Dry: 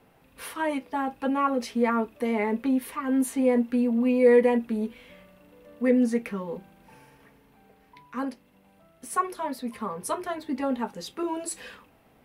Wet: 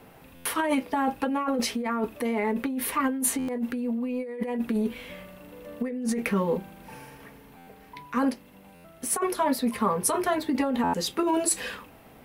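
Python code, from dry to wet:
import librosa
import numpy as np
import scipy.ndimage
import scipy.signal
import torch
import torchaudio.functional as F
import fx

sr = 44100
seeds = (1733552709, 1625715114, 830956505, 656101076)

y = fx.high_shelf(x, sr, hz=11000.0, db=5.5)
y = fx.over_compress(y, sr, threshold_db=-30.0, ratio=-1.0)
y = fx.buffer_glitch(y, sr, at_s=(0.35, 3.38, 7.57, 8.74, 10.83), block=512, repeats=8)
y = F.gain(torch.from_numpy(y), 3.5).numpy()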